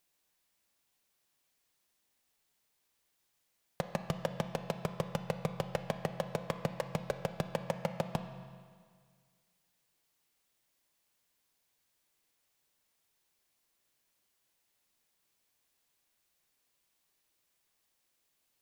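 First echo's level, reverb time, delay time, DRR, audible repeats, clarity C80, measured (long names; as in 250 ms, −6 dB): no echo audible, 1.9 s, no echo audible, 7.0 dB, no echo audible, 9.5 dB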